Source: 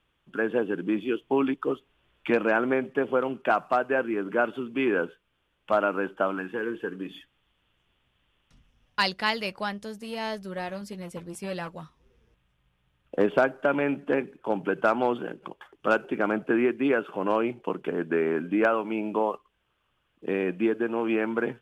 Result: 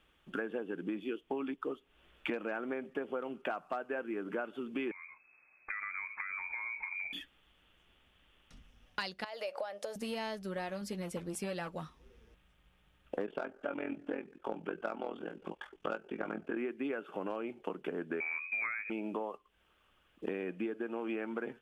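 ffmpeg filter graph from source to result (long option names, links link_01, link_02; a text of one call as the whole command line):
ffmpeg -i in.wav -filter_complex "[0:a]asettb=1/sr,asplit=3[link_01][link_02][link_03];[link_01]atrim=end=4.914[link_04];[link_02]atrim=start=4.91:end=7.13,asetpts=PTS-STARTPTS,afade=type=in:duration=0.004:curve=qsin,afade=type=out:start_time=2.216:duration=0.004:curve=qsin,lowshelf=frequency=240:gain=9,acompressor=threshold=-37dB:ratio=12:attack=3.2:release=140:knee=1:detection=peak,lowpass=frequency=2200:width_type=q:width=0.5098,lowpass=frequency=2200:width_type=q:width=0.6013,lowpass=frequency=2200:width_type=q:width=0.9,lowpass=frequency=2200:width_type=q:width=2.563,afreqshift=-2600[link_05];[link_03]atrim=start=7.126[link_06];[link_04][link_05]acrossfade=duration=0.004:curve1=hsin:curve2=qsin[link_07];[link_07][link_06]acrossfade=duration=0.004:curve1=qsin:curve2=hsin,asettb=1/sr,asplit=3[link_08][link_09][link_10];[link_08]atrim=end=9.244[link_11];[link_09]atrim=start=9.24:end=9.96,asetpts=PTS-STARTPTS,afade=type=in:duration=0.004:curve=qsin,afade=type=out:start_time=0.716:duration=0.004:curve=qsin,acompressor=threshold=-37dB:ratio=20:attack=3.2:release=140:knee=1:detection=peak,highpass=frequency=590:width_type=q:width=5.7[link_12];[link_10]atrim=start=9.956[link_13];[link_11][link_12]acrossfade=duration=0.004:curve1=hsin:curve2=qsin[link_14];[link_14][link_13]acrossfade=duration=0.004:curve1=qsin:curve2=hsin,asettb=1/sr,asplit=3[link_15][link_16][link_17];[link_15]atrim=end=13.264[link_18];[link_16]atrim=start=13.26:end=16.57,asetpts=PTS-STARTPTS,afade=type=in:duration=0.004:curve=qsin,afade=type=out:start_time=3.306:duration=0.004:curve=qsin,lowpass=9100,tremolo=f=42:d=0.919,asplit=2[link_19][link_20];[link_20]adelay=18,volume=-7.5dB[link_21];[link_19][link_21]amix=inputs=2:normalize=0,atrim=end_sample=145971[link_22];[link_17]atrim=start=16.566[link_23];[link_18][link_22]acrossfade=duration=0.004:curve1=hsin:curve2=qsin[link_24];[link_24][link_23]acrossfade=duration=0.004:curve1=qsin:curve2=hsin,asettb=1/sr,asplit=3[link_25][link_26][link_27];[link_25]atrim=end=18.204[link_28];[link_26]atrim=start=18.2:end=18.9,asetpts=PTS-STARTPTS,afade=type=in:duration=0.004:curve=qsin,afade=type=out:start_time=0.696:duration=0.004:curve=qsin,adynamicsmooth=sensitivity=2.5:basefreq=1200,lowpass=frequency=2300:width_type=q:width=0.5098,lowpass=frequency=2300:width_type=q:width=0.6013,lowpass=frequency=2300:width_type=q:width=0.9,lowpass=frequency=2300:width_type=q:width=2.563,afreqshift=-2700[link_29];[link_27]atrim=start=18.896[link_30];[link_28][link_29]acrossfade=duration=0.004:curve1=hsin:curve2=qsin[link_31];[link_31][link_30]acrossfade=duration=0.004:curve1=qsin:curve2=hsin,equalizer=frequency=120:width_type=o:width=0.45:gain=-10.5,acompressor=threshold=-39dB:ratio=6,bandreject=frequency=1000:width=15,volume=3.5dB" out.wav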